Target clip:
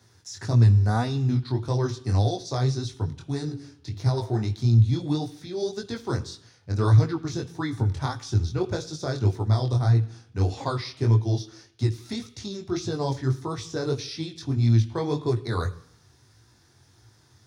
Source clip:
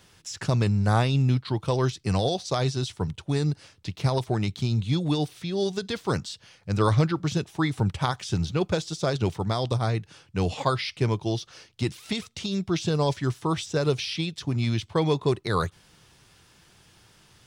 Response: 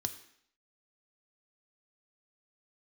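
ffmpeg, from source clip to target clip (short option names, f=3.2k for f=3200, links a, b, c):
-filter_complex "[0:a]asettb=1/sr,asplit=3[a][b][c];[a]atrim=end=3.224[d];[b]atrim=start=3.22:end=4.42,asetpts=PTS-STARTPTS,afade=t=in:d=0.004:c=qsin,afade=t=out:st=1.196:d=0.004:c=qsin,bandreject=f=47.48:t=h:w=4,bandreject=f=94.96:t=h:w=4,bandreject=f=142.44:t=h:w=4,bandreject=f=189.92:t=h:w=4,bandreject=f=237.4:t=h:w=4,bandreject=f=284.88:t=h:w=4,bandreject=f=332.36:t=h:w=4,bandreject=f=379.84:t=h:w=4,bandreject=f=427.32:t=h:w=4,bandreject=f=474.8:t=h:w=4,bandreject=f=522.28:t=h:w=4,bandreject=f=569.76:t=h:w=4,bandreject=f=617.24:t=h:w=4,bandreject=f=664.72:t=h:w=4,bandreject=f=712.2:t=h:w=4,bandreject=f=759.68:t=h:w=4,bandreject=f=807.16:t=h:w=4,bandreject=f=854.64:t=h:w=4,bandreject=f=902.12:t=h:w=4,bandreject=f=949.6:t=h:w=4,bandreject=f=997.08:t=h:w=4,bandreject=f=1.04456k:t=h:w=4,bandreject=f=1.09204k:t=h:w=4,bandreject=f=1.13952k:t=h:w=4,bandreject=f=1.187k:t=h:w=4,bandreject=f=1.23448k:t=h:w=4,bandreject=f=1.28196k:t=h:w=4,bandreject=f=1.32944k:t=h:w=4,bandreject=f=1.37692k:t=h:w=4,bandreject=f=1.4244k:t=h:w=4,bandreject=f=1.47188k:t=h:w=4,bandreject=f=1.51936k:t=h:w=4,bandreject=f=1.56684k:t=h:w=4,bandreject=f=1.61432k:t=h:w=4,bandreject=f=1.6618k:t=h:w=4,bandreject=f=1.70928k:t=h:w=4[e];[c]atrim=start=4.416[f];[d][e]acrossfade=d=0.004:c1=hsin:c2=qsin[g];[g][f]acrossfade=d=0.004:c1=qsin:c2=hsin,flanger=delay=17:depth=6.5:speed=1.7,asplit=2[h][i];[1:a]atrim=start_sample=2205,lowshelf=f=290:g=8.5[j];[i][j]afir=irnorm=-1:irlink=0,volume=0dB[k];[h][k]amix=inputs=2:normalize=0,volume=-7.5dB"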